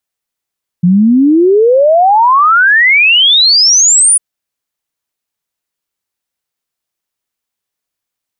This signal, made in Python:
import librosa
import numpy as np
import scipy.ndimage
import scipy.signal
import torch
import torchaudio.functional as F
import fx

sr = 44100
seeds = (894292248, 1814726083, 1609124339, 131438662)

y = fx.ess(sr, length_s=3.35, from_hz=170.0, to_hz=10000.0, level_db=-4.0)